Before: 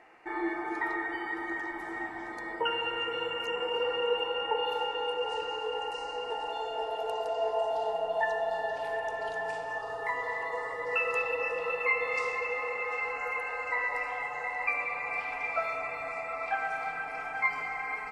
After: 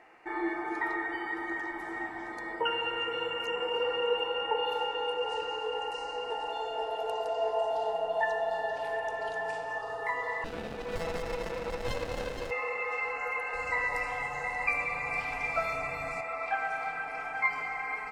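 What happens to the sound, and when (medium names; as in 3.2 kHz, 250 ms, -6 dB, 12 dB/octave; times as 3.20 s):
10.44–12.51 s: sliding maximum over 33 samples
13.53–16.21 s: tone controls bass +14 dB, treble +9 dB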